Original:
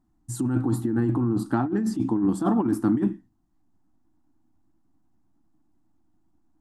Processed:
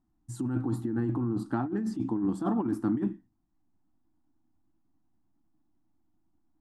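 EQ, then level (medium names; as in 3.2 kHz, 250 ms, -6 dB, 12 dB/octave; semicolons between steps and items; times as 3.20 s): treble shelf 8.3 kHz -10.5 dB; -6.0 dB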